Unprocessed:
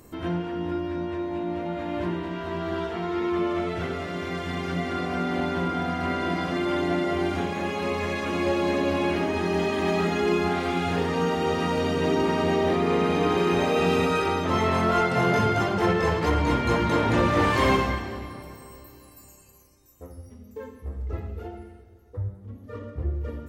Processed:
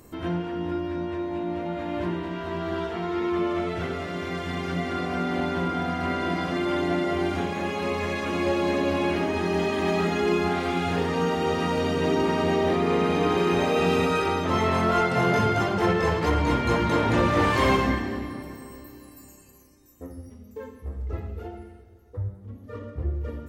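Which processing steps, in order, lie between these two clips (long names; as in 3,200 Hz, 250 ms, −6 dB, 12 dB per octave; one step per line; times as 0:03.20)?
0:17.83–0:20.30: hollow resonant body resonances 260/1,800 Hz, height 9 dB, ringing for 25 ms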